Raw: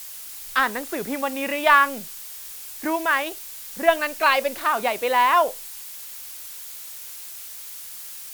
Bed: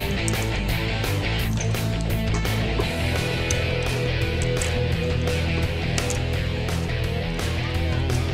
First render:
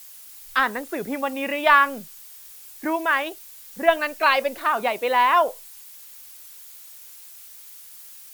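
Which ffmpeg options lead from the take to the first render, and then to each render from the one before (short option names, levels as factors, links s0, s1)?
-af "afftdn=nr=8:nf=-38"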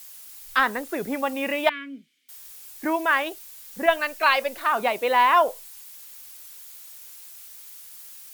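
-filter_complex "[0:a]asettb=1/sr,asplit=3[s0][s1][s2];[s0]atrim=end=1.694[s3];[s1]atrim=start=1.69:end=2.29,asetpts=PTS-STARTPTS,afade=t=in:d=0.004:c=qsin,afade=t=out:st=0.596:d=0.004:c=qsin,asplit=3[s4][s5][s6];[s4]bandpass=f=270:t=q:w=8,volume=1[s7];[s5]bandpass=f=2290:t=q:w=8,volume=0.501[s8];[s6]bandpass=f=3010:t=q:w=8,volume=0.355[s9];[s7][s8][s9]amix=inputs=3:normalize=0[s10];[s2]atrim=start=2.286[s11];[s3][s10]acrossfade=d=0.004:c1=hsin:c2=qsin[s12];[s12][s11]acrossfade=d=0.004:c1=qsin:c2=hsin,asettb=1/sr,asplit=3[s13][s14][s15];[s13]atrim=end=3.864[s16];[s14]atrim=start=3.86:end=4.72,asetpts=PTS-STARTPTS,afade=t=in:d=0.004:c=qsin,afade=t=out:st=0.856:d=0.004:c=qsin,equalizer=f=220:w=0.42:g=-5.5[s17];[s15]atrim=start=4.716[s18];[s16][s17]acrossfade=d=0.004:c1=hsin:c2=qsin[s19];[s19][s18]acrossfade=d=0.004:c1=qsin:c2=hsin"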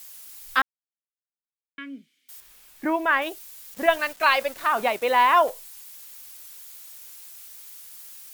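-filter_complex "[0:a]asettb=1/sr,asplit=3[s0][s1][s2];[s0]atrim=end=2.404[s3];[s1]atrim=start=2.4:end=3.22,asetpts=PTS-STARTPTS,afade=t=in:d=0.004:c=qsin,afade=t=out:st=0.816:d=0.004:c=qsin,bass=f=250:g=3,treble=f=4000:g=-9[s4];[s2]atrim=start=3.216[s5];[s3][s4]acrossfade=d=0.004:c1=hsin:c2=qsin[s6];[s6][s5]acrossfade=d=0.004:c1=qsin:c2=hsin,asettb=1/sr,asplit=3[s7][s8][s9];[s7]atrim=end=3.744[s10];[s8]atrim=start=3.74:end=5.5,asetpts=PTS-STARTPTS,afade=t=in:d=0.004:c=qsin,afade=t=out:st=1.756:d=0.004:c=qsin,aeval=exprs='val(0)*gte(abs(val(0)),0.015)':c=same[s11];[s9]atrim=start=5.496[s12];[s10][s11]acrossfade=d=0.004:c1=hsin:c2=qsin[s13];[s13][s12]acrossfade=d=0.004:c1=qsin:c2=hsin,asplit=3[s14][s15][s16];[s14]atrim=end=0.62,asetpts=PTS-STARTPTS,afade=t=out:st=0.616:d=0.004:c=hsin[s17];[s15]atrim=start=0.62:end=1.78,asetpts=PTS-STARTPTS,volume=0[s18];[s16]atrim=start=1.78,asetpts=PTS-STARTPTS,afade=t=in:d=0.004:c=hsin[s19];[s17][s18][s19]concat=n=3:v=0:a=1"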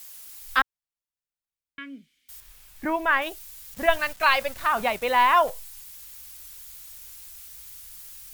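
-af "asubboost=boost=8:cutoff=120"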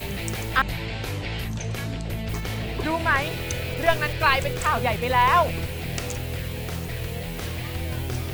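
-filter_complex "[1:a]volume=0.501[s0];[0:a][s0]amix=inputs=2:normalize=0"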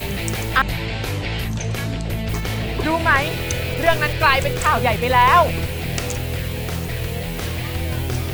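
-af "volume=1.88,alimiter=limit=0.708:level=0:latency=1"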